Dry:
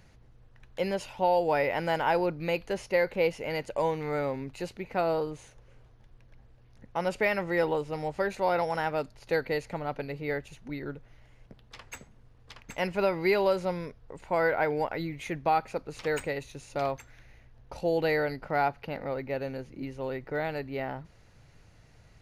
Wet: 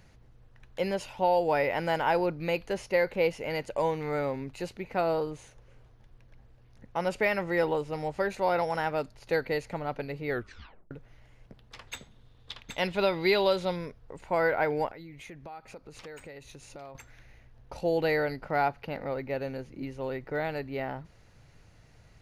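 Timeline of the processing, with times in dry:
10.29 tape stop 0.62 s
11.87–13.76 bell 3600 Hz +14.5 dB 0.43 oct
14.89–16.95 compressor 4:1, threshold -44 dBFS

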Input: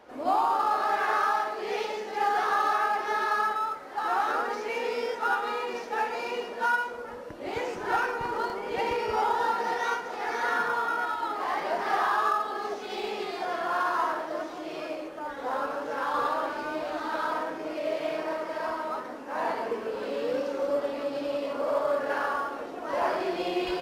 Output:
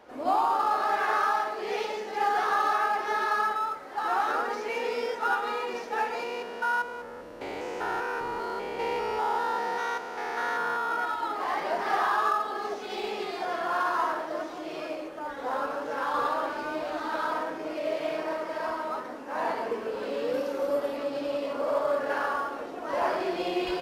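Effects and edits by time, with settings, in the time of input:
6.23–10.92 stepped spectrum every 0.2 s
20.33–20.97 bell 12000 Hz +9 dB 0.48 oct

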